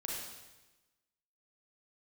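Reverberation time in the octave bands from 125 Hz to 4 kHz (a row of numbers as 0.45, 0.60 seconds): 1.2, 1.2, 1.1, 1.1, 1.1, 1.1 seconds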